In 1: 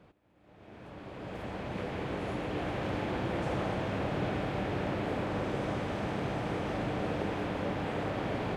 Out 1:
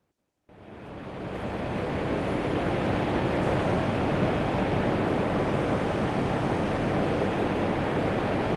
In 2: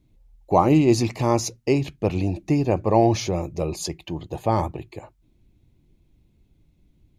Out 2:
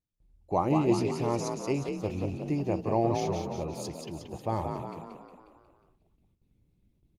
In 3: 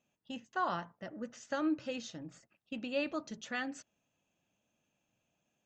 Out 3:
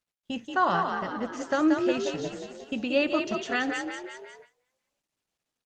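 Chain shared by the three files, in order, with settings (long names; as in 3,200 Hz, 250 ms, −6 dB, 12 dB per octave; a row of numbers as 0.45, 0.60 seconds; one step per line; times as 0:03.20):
on a send: echo with shifted repeats 180 ms, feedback 54%, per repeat +42 Hz, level −5 dB
on the sum: noise gate with hold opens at −49 dBFS
Opus 32 kbit/s 48,000 Hz
normalise the peak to −12 dBFS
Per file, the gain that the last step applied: +7.0, −9.5, +10.0 decibels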